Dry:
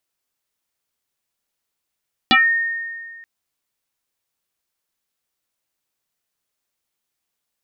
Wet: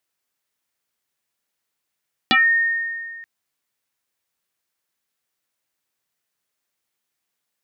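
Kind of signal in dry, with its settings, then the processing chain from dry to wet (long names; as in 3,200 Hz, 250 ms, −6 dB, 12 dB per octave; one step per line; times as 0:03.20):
two-operator FM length 0.93 s, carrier 1,840 Hz, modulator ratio 0.29, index 5, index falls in 0.22 s exponential, decay 1.86 s, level −8.5 dB
high-pass filter 80 Hz
downward compressor 2 to 1, threshold −19 dBFS
parametric band 1,800 Hz +3 dB 0.77 octaves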